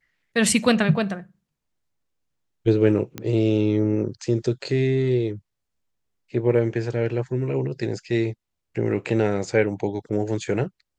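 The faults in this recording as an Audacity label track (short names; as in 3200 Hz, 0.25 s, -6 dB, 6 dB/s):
3.180000	3.180000	pop -14 dBFS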